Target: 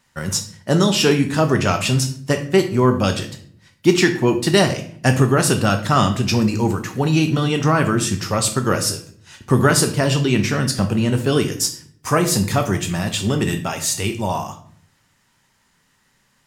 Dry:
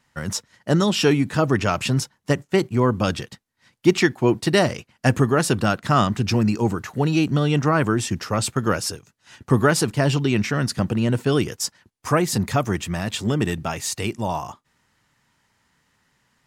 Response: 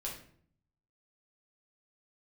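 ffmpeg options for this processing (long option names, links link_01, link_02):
-filter_complex "[0:a]asplit=2[link_01][link_02];[1:a]atrim=start_sample=2205,highshelf=frequency=3800:gain=10.5[link_03];[link_02][link_03]afir=irnorm=-1:irlink=0,volume=-1.5dB[link_04];[link_01][link_04]amix=inputs=2:normalize=0,volume=-2dB"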